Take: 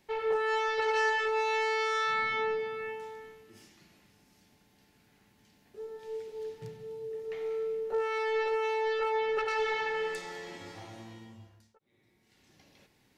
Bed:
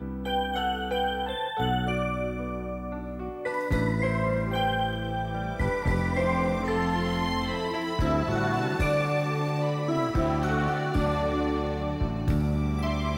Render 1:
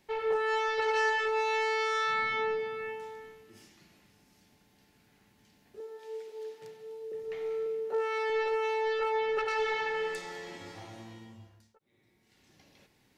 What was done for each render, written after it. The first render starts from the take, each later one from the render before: 5.80–7.12 s: high-pass 380 Hz; 7.66–8.30 s: high-pass 170 Hz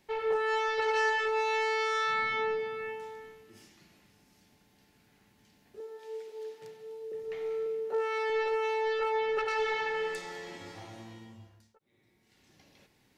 no audible change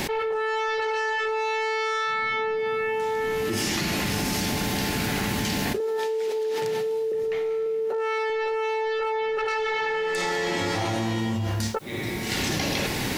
level flattener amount 100%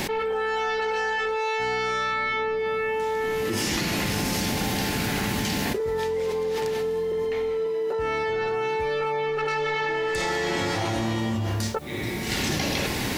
add bed -13.5 dB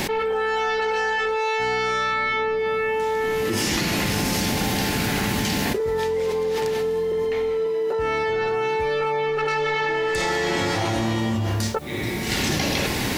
trim +3 dB

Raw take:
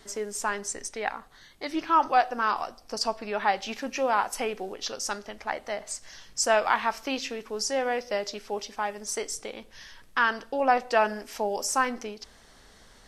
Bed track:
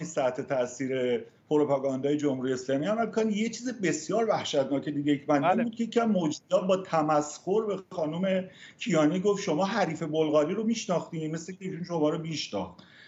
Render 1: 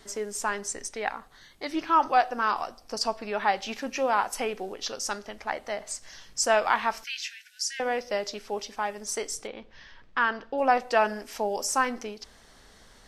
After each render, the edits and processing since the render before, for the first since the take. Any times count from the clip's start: 7.04–7.80 s: brick-wall FIR high-pass 1.4 kHz; 9.47–10.58 s: distance through air 190 m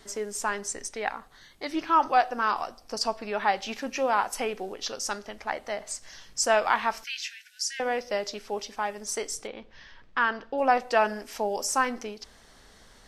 no audible change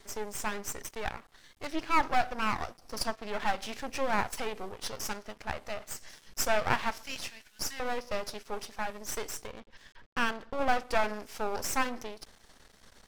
half-wave rectifier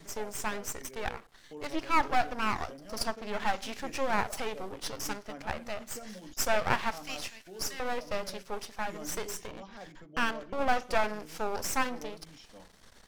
add bed track -21 dB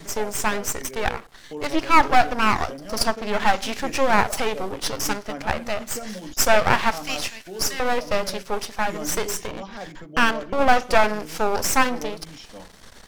trim +11 dB; peak limiter -1 dBFS, peak gain reduction 3 dB

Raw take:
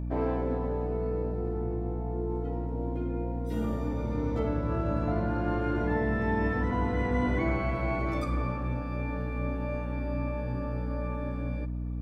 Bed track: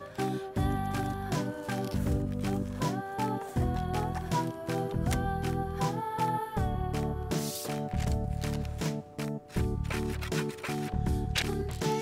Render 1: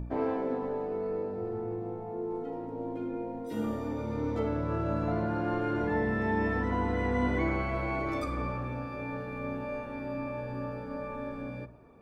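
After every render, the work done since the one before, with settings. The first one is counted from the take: de-hum 60 Hz, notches 11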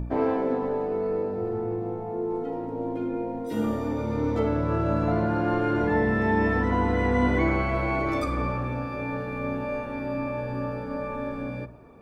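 trim +6 dB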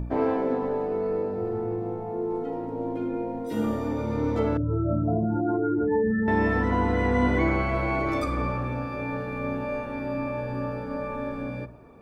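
4.57–6.28 s: spectral contrast enhancement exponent 3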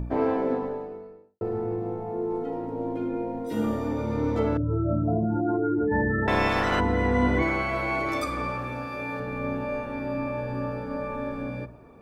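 0.53–1.41 s: fade out quadratic; 5.91–6.79 s: spectral peaks clipped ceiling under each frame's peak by 24 dB; 7.42–9.20 s: tilt EQ +2 dB/octave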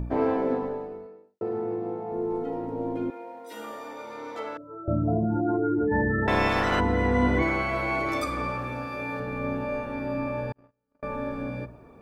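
1.06–2.12 s: band-pass 180–6500 Hz; 3.10–4.88 s: Bessel high-pass 930 Hz; 10.52–11.03 s: gate -26 dBFS, range -48 dB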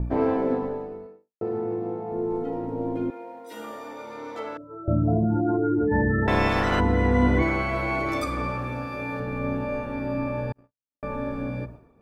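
expander -42 dBFS; bass shelf 260 Hz +5 dB

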